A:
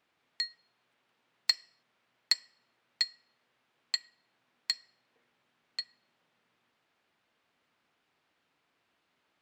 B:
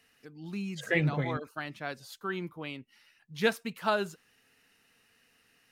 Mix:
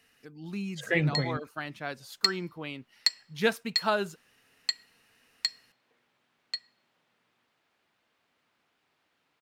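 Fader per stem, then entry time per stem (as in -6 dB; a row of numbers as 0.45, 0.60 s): +2.0, +1.0 dB; 0.75, 0.00 s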